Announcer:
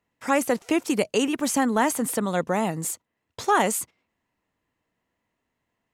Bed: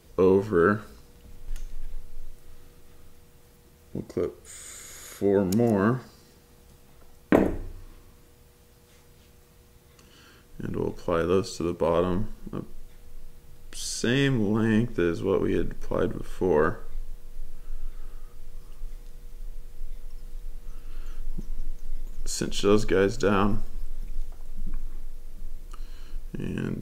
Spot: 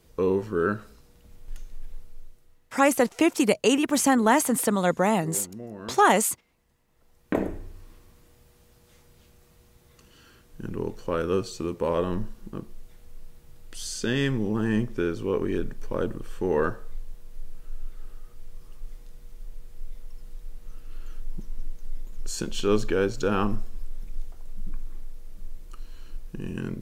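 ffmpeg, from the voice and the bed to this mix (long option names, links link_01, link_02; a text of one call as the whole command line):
ffmpeg -i stem1.wav -i stem2.wav -filter_complex "[0:a]adelay=2500,volume=2dB[link_01];[1:a]volume=11dB,afade=type=out:start_time=2:duration=0.6:silence=0.223872,afade=type=in:start_time=6.88:duration=0.9:silence=0.177828[link_02];[link_01][link_02]amix=inputs=2:normalize=0" out.wav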